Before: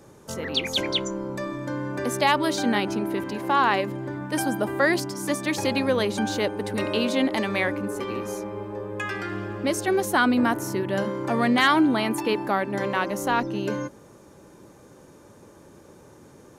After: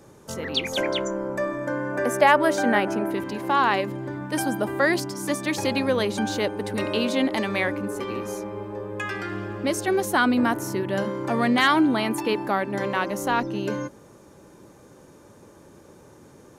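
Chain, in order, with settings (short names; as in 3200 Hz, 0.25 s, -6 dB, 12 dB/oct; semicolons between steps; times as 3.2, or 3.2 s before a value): 0.72–3.11 fifteen-band EQ 100 Hz -8 dB, 630 Hz +8 dB, 1600 Hz +7 dB, 4000 Hz -9 dB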